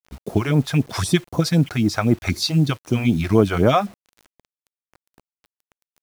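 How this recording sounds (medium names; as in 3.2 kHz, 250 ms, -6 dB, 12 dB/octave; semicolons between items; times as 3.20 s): phasing stages 2, 3.9 Hz, lowest notch 190–3000 Hz; a quantiser's noise floor 8-bit, dither none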